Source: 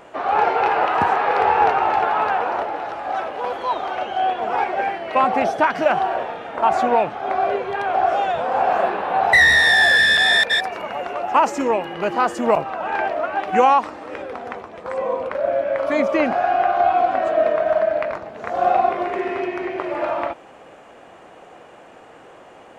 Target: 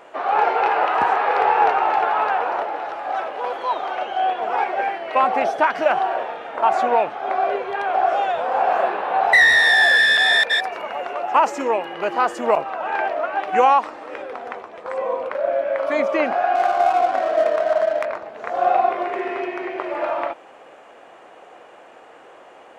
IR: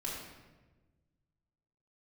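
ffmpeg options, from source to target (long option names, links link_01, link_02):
-filter_complex "[0:a]asettb=1/sr,asplit=3[link_01][link_02][link_03];[link_01]atrim=end=16.554[link_04];[link_02]atrim=start=16.55:end=18.05,asetpts=PTS-STARTPTS,afade=type=in:duration=0.004:curve=qsin,afade=type=out:start_time=1.496:duration=0.004:curve=qsin,adynamicsmooth=sensitivity=3.5:basefreq=900[link_05];[link_03]atrim=start=18.046[link_06];[link_04][link_05]acrossfade=duration=0.004:curve1=hsin:curve2=qsin[link_07];[link_07][link_06]acrossfade=duration=0.004:curve1=qsin:curve2=hsin,bass=frequency=250:gain=-13,treble=frequency=4000:gain=-3"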